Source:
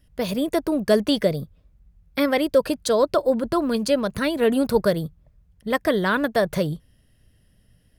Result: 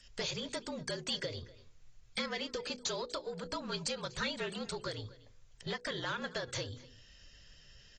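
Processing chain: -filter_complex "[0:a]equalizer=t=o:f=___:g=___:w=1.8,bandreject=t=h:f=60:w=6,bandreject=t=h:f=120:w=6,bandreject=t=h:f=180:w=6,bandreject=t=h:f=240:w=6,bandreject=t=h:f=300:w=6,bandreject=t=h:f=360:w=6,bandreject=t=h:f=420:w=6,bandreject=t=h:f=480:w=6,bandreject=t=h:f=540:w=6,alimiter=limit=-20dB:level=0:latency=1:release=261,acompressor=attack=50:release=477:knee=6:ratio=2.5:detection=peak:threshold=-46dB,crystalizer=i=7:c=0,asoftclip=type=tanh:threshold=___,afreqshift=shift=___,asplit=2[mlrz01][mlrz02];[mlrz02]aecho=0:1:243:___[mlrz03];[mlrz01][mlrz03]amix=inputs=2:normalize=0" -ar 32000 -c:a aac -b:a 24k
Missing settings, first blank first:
280, -6, -28.5dB, -51, 0.1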